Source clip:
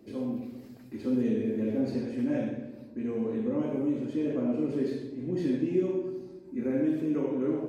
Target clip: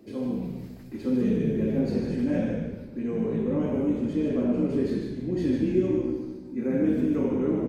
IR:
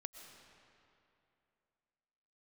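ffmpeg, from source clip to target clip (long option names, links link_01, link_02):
-filter_complex "[0:a]asplit=5[link_01][link_02][link_03][link_04][link_05];[link_02]adelay=150,afreqshift=-61,volume=-5dB[link_06];[link_03]adelay=300,afreqshift=-122,volume=-14.6dB[link_07];[link_04]adelay=450,afreqshift=-183,volume=-24.3dB[link_08];[link_05]adelay=600,afreqshift=-244,volume=-33.9dB[link_09];[link_01][link_06][link_07][link_08][link_09]amix=inputs=5:normalize=0,volume=2.5dB"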